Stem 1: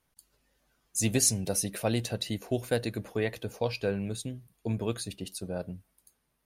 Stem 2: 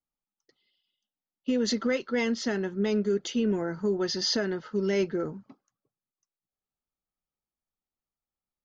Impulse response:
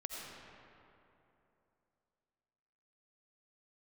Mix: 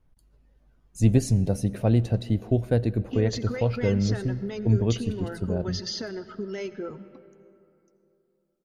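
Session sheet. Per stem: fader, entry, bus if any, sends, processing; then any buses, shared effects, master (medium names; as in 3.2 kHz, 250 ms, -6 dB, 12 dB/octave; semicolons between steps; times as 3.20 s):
-1.5 dB, 0.00 s, send -16.5 dB, tilt EQ -4 dB/octave
+2.5 dB, 1.65 s, send -10 dB, reverb removal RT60 1.2 s; compression 6:1, threshold -35 dBFS, peak gain reduction 11.5 dB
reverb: on, RT60 3.0 s, pre-delay 45 ms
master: none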